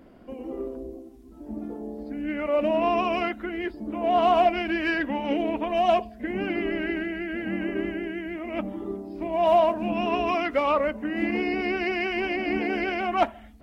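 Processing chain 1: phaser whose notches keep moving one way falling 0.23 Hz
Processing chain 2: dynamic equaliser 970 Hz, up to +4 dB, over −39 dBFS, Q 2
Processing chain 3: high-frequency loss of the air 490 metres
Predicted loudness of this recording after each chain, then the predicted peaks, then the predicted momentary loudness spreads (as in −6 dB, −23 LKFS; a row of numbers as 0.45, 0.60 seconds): −29.0, −25.0, −28.0 LKFS; −10.5, −7.5, −11.5 dBFS; 12, 15, 13 LU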